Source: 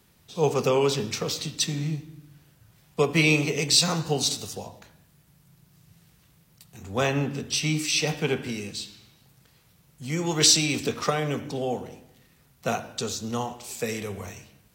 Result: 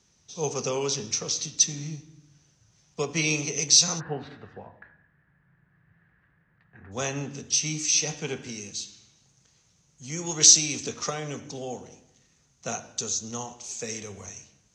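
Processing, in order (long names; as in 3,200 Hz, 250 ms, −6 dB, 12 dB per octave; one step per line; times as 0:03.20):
transistor ladder low-pass 6,400 Hz, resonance 80%, from 0:03.99 1,800 Hz, from 0:06.91 6,700 Hz
level +5.5 dB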